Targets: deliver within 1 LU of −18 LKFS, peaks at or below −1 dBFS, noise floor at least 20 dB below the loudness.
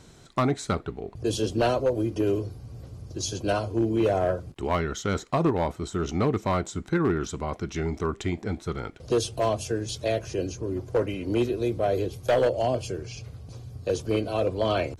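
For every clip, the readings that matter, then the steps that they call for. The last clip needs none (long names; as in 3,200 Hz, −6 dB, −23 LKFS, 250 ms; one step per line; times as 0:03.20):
share of clipped samples 0.9%; peaks flattened at −16.5 dBFS; integrated loudness −27.5 LKFS; sample peak −16.5 dBFS; target loudness −18.0 LKFS
→ clipped peaks rebuilt −16.5 dBFS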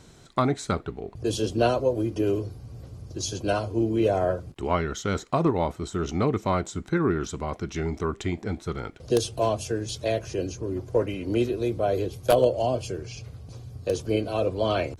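share of clipped samples 0.0%; integrated loudness −27.0 LKFS; sample peak −7.5 dBFS; target loudness −18.0 LKFS
→ level +9 dB
brickwall limiter −1 dBFS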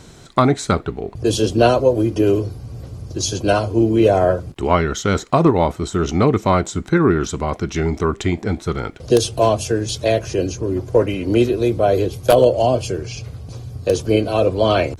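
integrated loudness −18.0 LKFS; sample peak −1.0 dBFS; background noise floor −41 dBFS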